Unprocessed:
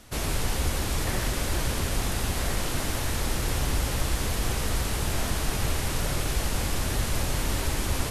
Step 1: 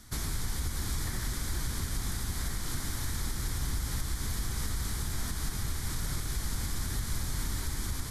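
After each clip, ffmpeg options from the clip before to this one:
ffmpeg -i in.wav -af "equalizer=frequency=2700:width=4.5:gain=-15,alimiter=limit=-22dB:level=0:latency=1:release=287,equalizer=frequency=570:width=1.1:gain=-14" out.wav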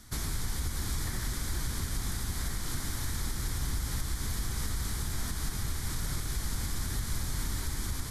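ffmpeg -i in.wav -af anull out.wav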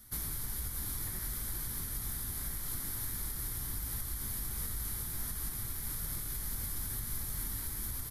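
ffmpeg -i in.wav -filter_complex "[0:a]aexciter=amount=7.4:drive=3.1:freq=10000,flanger=delay=1.5:depth=7.6:regen=-68:speed=1.5:shape=sinusoidal,asplit=2[link_01][link_02];[link_02]adelay=19,volume=-11dB[link_03];[link_01][link_03]amix=inputs=2:normalize=0,volume=-4dB" out.wav

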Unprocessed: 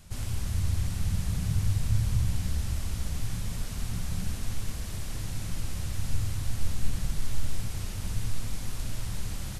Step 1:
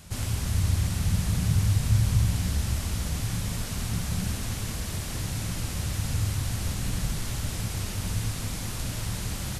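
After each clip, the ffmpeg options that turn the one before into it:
ffmpeg -i in.wav -af "highpass=frequency=73:poles=1,volume=6.5dB" out.wav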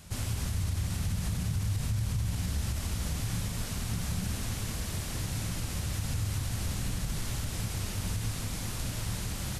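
ffmpeg -i in.wav -af "alimiter=limit=-20.5dB:level=0:latency=1:release=65,volume=-2.5dB" out.wav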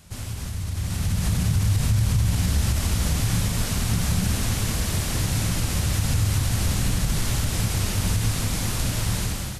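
ffmpeg -i in.wav -af "dynaudnorm=framelen=660:gausssize=3:maxgain=10dB" out.wav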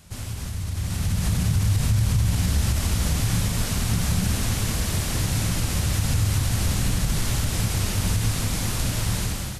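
ffmpeg -i in.wav -af anull out.wav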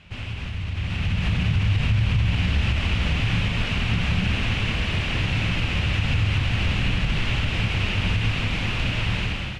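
ffmpeg -i in.wav -af "lowpass=frequency=2700:width_type=q:width=3.9" out.wav

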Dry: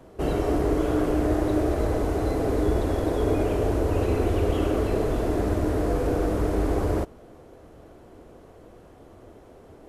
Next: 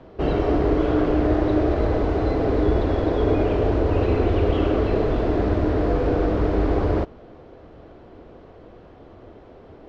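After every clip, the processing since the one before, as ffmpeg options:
ffmpeg -i in.wav -af "lowpass=frequency=4500:width=0.5412,lowpass=frequency=4500:width=1.3066,volume=3.5dB" out.wav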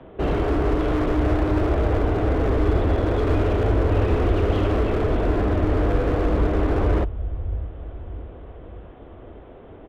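ffmpeg -i in.wav -filter_complex "[0:a]aresample=8000,aresample=44100,acrossover=split=120[link_01][link_02];[link_01]aecho=1:1:618|1236|1854|2472|3090:0.631|0.265|0.111|0.0467|0.0196[link_03];[link_02]asoftclip=type=hard:threshold=-22.5dB[link_04];[link_03][link_04]amix=inputs=2:normalize=0,volume=1.5dB" out.wav

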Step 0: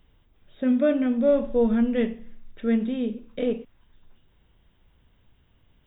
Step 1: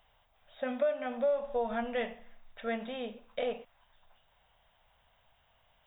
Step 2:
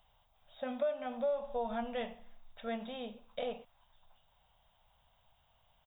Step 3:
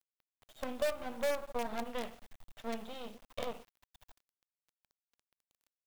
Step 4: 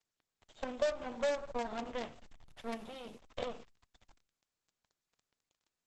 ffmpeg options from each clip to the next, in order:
ffmpeg -i in.wav -af "lowshelf=frequency=480:width_type=q:width=3:gain=-12.5,acompressor=threshold=-28dB:ratio=4" out.wav
ffmpeg -i in.wav -af "firequalizer=gain_entry='entry(170,0);entry(320,-7);entry(850,-1);entry(1800,-9);entry(3700,0)':delay=0.05:min_phase=1" out.wav
ffmpeg -i in.wav -af "aeval=exprs='if(lt(val(0),0),0.447*val(0),val(0))':channel_layout=same,acrusher=bits=7:dc=4:mix=0:aa=0.000001,volume=2dB" out.wav
ffmpeg -i in.wav -af "volume=1dB" -ar 48000 -c:a libopus -b:a 12k out.opus

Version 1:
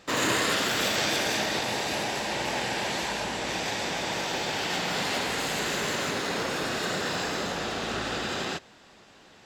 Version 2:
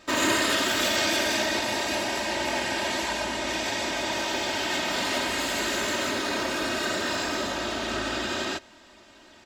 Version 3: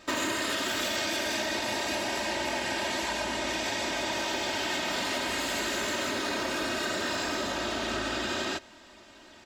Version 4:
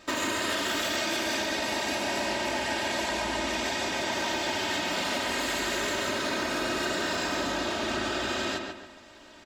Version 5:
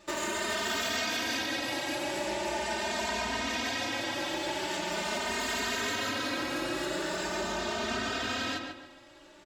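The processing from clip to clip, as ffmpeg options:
ffmpeg -i in.wav -af "aecho=1:1:3.2:0.71" out.wav
ffmpeg -i in.wav -af "acompressor=threshold=-27dB:ratio=6" out.wav
ffmpeg -i in.wav -filter_complex "[0:a]asplit=2[link_01][link_02];[link_02]adelay=142,lowpass=frequency=3100:poles=1,volume=-4dB,asplit=2[link_03][link_04];[link_04]adelay=142,lowpass=frequency=3100:poles=1,volume=0.39,asplit=2[link_05][link_06];[link_06]adelay=142,lowpass=frequency=3100:poles=1,volume=0.39,asplit=2[link_07][link_08];[link_08]adelay=142,lowpass=frequency=3100:poles=1,volume=0.39,asplit=2[link_09][link_10];[link_10]adelay=142,lowpass=frequency=3100:poles=1,volume=0.39[link_11];[link_01][link_03][link_05][link_07][link_09][link_11]amix=inputs=6:normalize=0" out.wav
ffmpeg -i in.wav -filter_complex "[0:a]asplit=2[link_01][link_02];[link_02]adelay=3,afreqshift=0.42[link_03];[link_01][link_03]amix=inputs=2:normalize=1" out.wav

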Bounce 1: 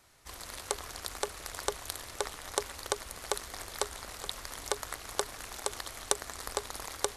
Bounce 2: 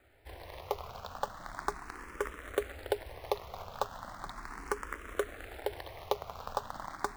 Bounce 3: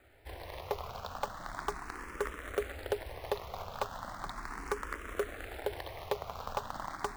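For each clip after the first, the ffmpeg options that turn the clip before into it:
ffmpeg -i in.wav -filter_complex "[0:a]lowpass=1800,acrusher=bits=3:mode=log:mix=0:aa=0.000001,asplit=2[link_01][link_02];[link_02]afreqshift=0.37[link_03];[link_01][link_03]amix=inputs=2:normalize=1,volume=4.5dB" out.wav
ffmpeg -i in.wav -af "asoftclip=type=tanh:threshold=-25dB,volume=2.5dB" out.wav

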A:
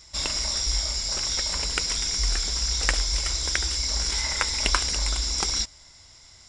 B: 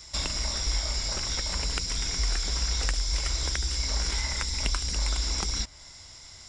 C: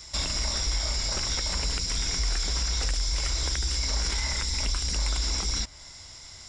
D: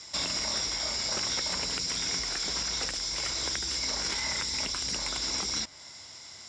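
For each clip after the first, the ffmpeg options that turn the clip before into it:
ffmpeg -i in.wav -filter_complex "[0:a]acrossover=split=250|3100|7800[link_01][link_02][link_03][link_04];[link_01]acompressor=threshold=-29dB:ratio=4[link_05];[link_02]acompressor=threshold=-40dB:ratio=4[link_06];[link_03]acompressor=threshold=-38dB:ratio=4[link_07];[link_04]acompressor=threshold=-50dB:ratio=4[link_08];[link_05][link_06][link_07][link_08]amix=inputs=4:normalize=0,volume=3.5dB" out.wav
ffmpeg -i in.wav -af "alimiter=limit=-20.5dB:level=0:latency=1:release=13,volume=2dB" out.wav
ffmpeg -i in.wav -af "highpass=160,lowpass=7900" out.wav

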